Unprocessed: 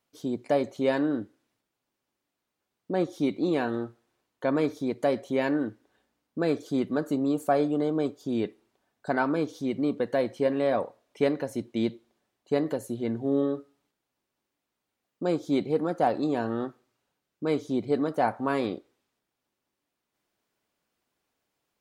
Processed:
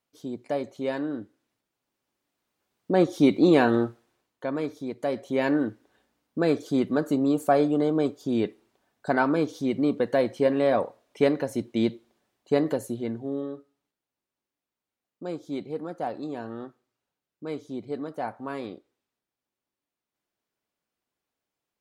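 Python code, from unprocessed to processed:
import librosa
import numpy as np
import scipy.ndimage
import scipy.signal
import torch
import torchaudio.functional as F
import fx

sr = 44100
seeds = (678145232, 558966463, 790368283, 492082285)

y = fx.gain(x, sr, db=fx.line((1.11, -4.0), (3.35, 8.0), (3.85, 8.0), (4.49, -4.0), (4.99, -4.0), (5.52, 3.0), (12.82, 3.0), (13.42, -7.0)))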